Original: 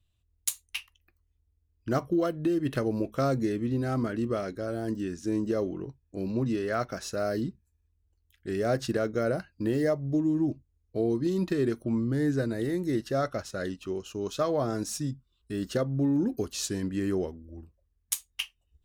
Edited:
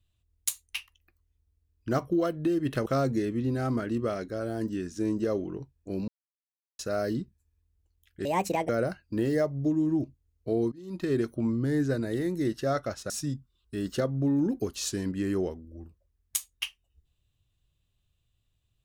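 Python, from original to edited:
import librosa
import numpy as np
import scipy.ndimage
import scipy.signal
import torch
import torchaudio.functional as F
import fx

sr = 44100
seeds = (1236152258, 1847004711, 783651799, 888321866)

y = fx.edit(x, sr, fx.cut(start_s=2.86, length_s=0.27),
    fx.silence(start_s=6.35, length_s=0.71),
    fx.speed_span(start_s=8.52, length_s=0.65, speed=1.48),
    fx.fade_in_from(start_s=11.2, length_s=0.38, curve='qua', floor_db=-22.0),
    fx.cut(start_s=13.58, length_s=1.29), tone=tone)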